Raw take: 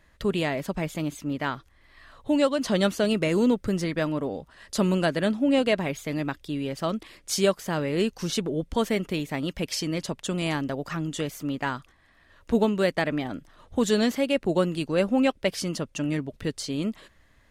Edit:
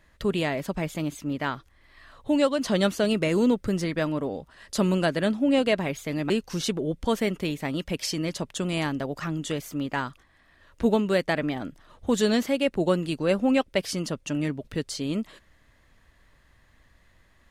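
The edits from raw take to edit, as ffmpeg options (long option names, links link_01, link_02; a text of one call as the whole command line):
ffmpeg -i in.wav -filter_complex "[0:a]asplit=2[link_01][link_02];[link_01]atrim=end=6.302[link_03];[link_02]atrim=start=7.988[link_04];[link_03][link_04]acrossfade=duration=0.004:curve1=hsin:curve2=hsin" out.wav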